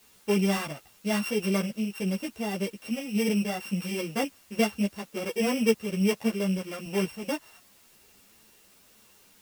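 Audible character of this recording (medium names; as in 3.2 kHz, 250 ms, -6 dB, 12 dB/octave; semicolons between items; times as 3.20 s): a buzz of ramps at a fixed pitch in blocks of 16 samples; random-step tremolo 3.5 Hz; a quantiser's noise floor 10-bit, dither triangular; a shimmering, thickened sound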